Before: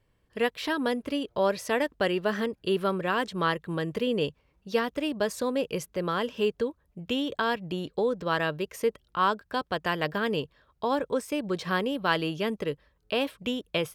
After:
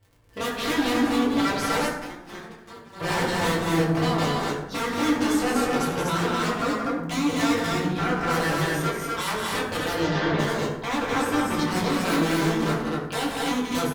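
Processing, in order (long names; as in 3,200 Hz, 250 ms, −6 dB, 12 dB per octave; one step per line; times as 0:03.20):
wave folding −28.5 dBFS
loudspeakers that aren't time-aligned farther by 61 metres −6 dB, 85 metres −2 dB
0:01.88–0:03.01: noise gate −28 dBFS, range −27 dB
surface crackle 34 per second −44 dBFS
0:09.93–0:10.38: low-pass filter 7,700 Hz → 3,700 Hz 24 dB per octave
convolution reverb RT60 0.95 s, pre-delay 5 ms, DRR −6.5 dB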